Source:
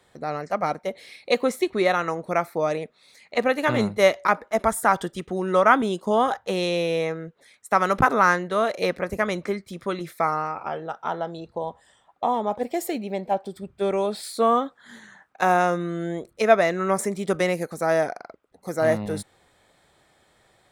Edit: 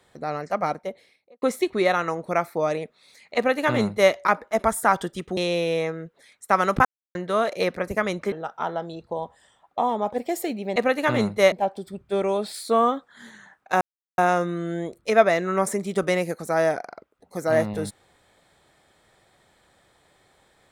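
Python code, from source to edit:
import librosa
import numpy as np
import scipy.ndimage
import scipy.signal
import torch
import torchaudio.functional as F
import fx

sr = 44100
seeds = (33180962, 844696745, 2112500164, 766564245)

y = fx.studio_fade_out(x, sr, start_s=0.61, length_s=0.81)
y = fx.edit(y, sr, fx.duplicate(start_s=3.36, length_s=0.76, to_s=13.21),
    fx.cut(start_s=5.37, length_s=1.22),
    fx.silence(start_s=8.07, length_s=0.3),
    fx.cut(start_s=9.54, length_s=1.23),
    fx.insert_silence(at_s=15.5, length_s=0.37), tone=tone)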